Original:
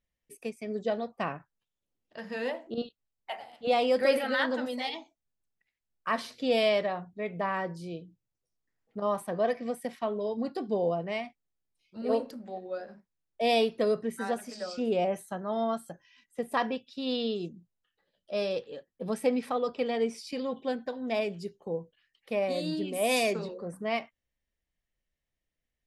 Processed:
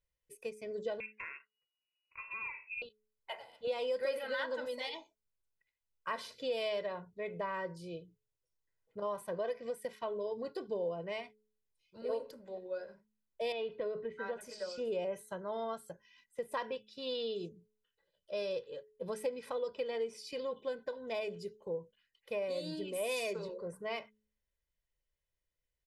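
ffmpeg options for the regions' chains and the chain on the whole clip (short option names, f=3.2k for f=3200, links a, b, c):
-filter_complex "[0:a]asettb=1/sr,asplit=3[a][b][c];[a]atrim=end=1.004[d];[b]atrim=start=1:end=2.82,asetpts=PTS-STARTPTS,afade=t=in:d=0.004:c=qsin,afade=t=out:st=1.816:d=0.004:c=qsin,lowpass=f=2.5k:t=q:w=0.5098,lowpass=f=2.5k:t=q:w=0.6013,lowpass=f=2.5k:t=q:w=0.9,lowpass=f=2.5k:t=q:w=2.563,afreqshift=-2900,acompressor=threshold=-35dB:ratio=3:attack=3.2:release=140:knee=1:detection=peak[e];[c]atrim=start=2.816[f];[d][e]acrossfade=d=0.004:c1=hsin:c2=qsin[g];[g][f]acrossfade=d=0.004:c1=qsin:c2=hsin,asettb=1/sr,asplit=3[h][i][j];[h]atrim=end=13.524[k];[i]atrim=start=13.52:end=14.41,asetpts=PTS-STARTPTS,afade=t=in:d=0.004:c=qsin,afade=t=out:st=0.886:d=0.004:c=qsin,lowpass=f=3.4k:w=0.5412,lowpass=f=3.4k:w=1.3066,acompressor=threshold=-28dB:ratio=3:attack=3.2:release=140:knee=1:detection=peak[l];[j]atrim=start=14.406[m];[k][l]acrossfade=d=0.004:c1=hsin:c2=qsin[n];[n][m]acrossfade=d=0.004:c1=qsin:c2=hsin,aecho=1:1:2:0.66,bandreject=f=214.2:t=h:w=4,bandreject=f=428.4:t=h:w=4,acompressor=threshold=-28dB:ratio=3,volume=-6dB"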